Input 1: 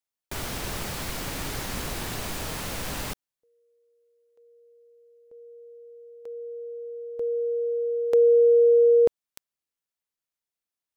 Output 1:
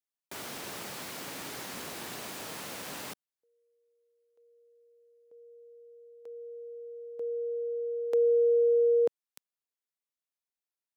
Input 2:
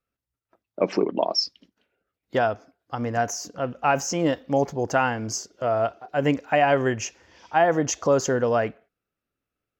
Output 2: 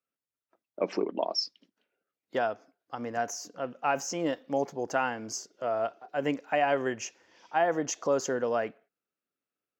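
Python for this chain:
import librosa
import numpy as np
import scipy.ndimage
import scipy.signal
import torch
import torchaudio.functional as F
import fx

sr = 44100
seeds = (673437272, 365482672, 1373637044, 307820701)

y = scipy.signal.sosfilt(scipy.signal.butter(2, 210.0, 'highpass', fs=sr, output='sos'), x)
y = y * 10.0 ** (-6.5 / 20.0)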